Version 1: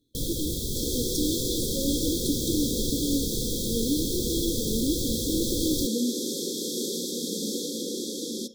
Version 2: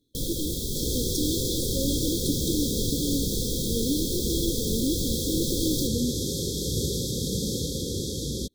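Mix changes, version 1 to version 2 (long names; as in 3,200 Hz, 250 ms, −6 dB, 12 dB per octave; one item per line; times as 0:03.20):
second sound: remove linear-phase brick-wall high-pass 180 Hz
reverb: off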